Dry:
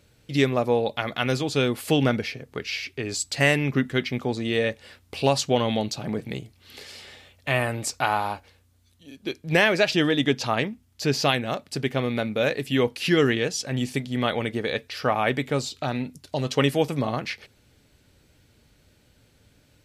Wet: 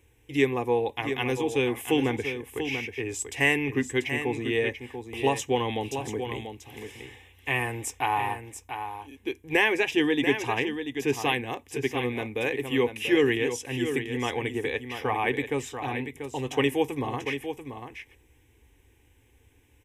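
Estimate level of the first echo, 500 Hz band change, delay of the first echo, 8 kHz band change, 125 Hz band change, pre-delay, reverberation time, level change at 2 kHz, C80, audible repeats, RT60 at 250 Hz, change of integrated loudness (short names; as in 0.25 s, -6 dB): -8.5 dB, -2.5 dB, 0.688 s, -4.0 dB, -7.0 dB, none, none, -1.0 dB, none, 1, none, -3.0 dB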